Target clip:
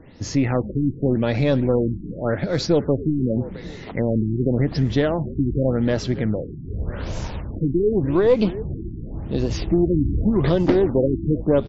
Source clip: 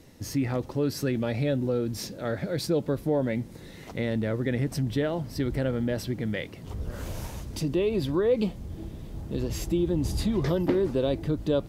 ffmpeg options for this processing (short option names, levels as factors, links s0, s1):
-filter_complex "[0:a]asplit=5[s0][s1][s2][s3][s4];[s1]adelay=278,afreqshift=-66,volume=0.168[s5];[s2]adelay=556,afreqshift=-132,volume=0.0708[s6];[s3]adelay=834,afreqshift=-198,volume=0.0295[s7];[s4]adelay=1112,afreqshift=-264,volume=0.0124[s8];[s0][s5][s6][s7][s8]amix=inputs=5:normalize=0,aeval=exprs='0.224*(cos(1*acos(clip(val(0)/0.224,-1,1)))-cos(1*PI/2))+0.0158*(cos(4*acos(clip(val(0)/0.224,-1,1)))-cos(4*PI/2))':c=same,afftfilt=real='re*lt(b*sr/1024,370*pow(7700/370,0.5+0.5*sin(2*PI*0.87*pts/sr)))':imag='im*lt(b*sr/1024,370*pow(7700/370,0.5+0.5*sin(2*PI*0.87*pts/sr)))':win_size=1024:overlap=0.75,volume=2.24"